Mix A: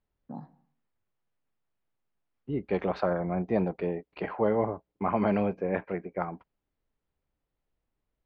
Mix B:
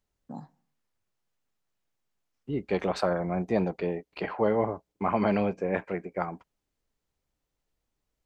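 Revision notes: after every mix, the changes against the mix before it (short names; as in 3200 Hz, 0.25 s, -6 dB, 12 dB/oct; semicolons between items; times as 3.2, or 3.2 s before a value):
first voice: send -8.5 dB; master: remove air absorption 290 m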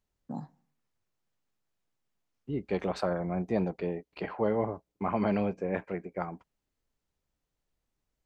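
second voice -5.0 dB; master: add low shelf 390 Hz +4 dB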